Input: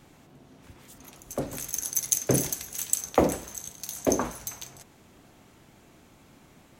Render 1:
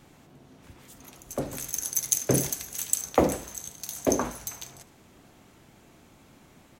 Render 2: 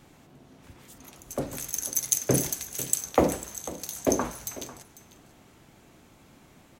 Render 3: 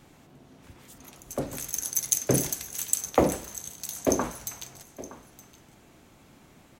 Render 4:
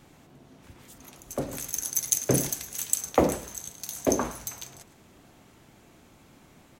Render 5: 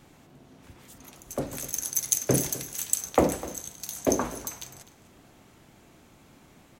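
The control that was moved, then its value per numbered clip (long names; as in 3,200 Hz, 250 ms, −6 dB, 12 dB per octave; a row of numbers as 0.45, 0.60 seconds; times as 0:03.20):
single-tap delay, delay time: 74, 496, 918, 109, 253 milliseconds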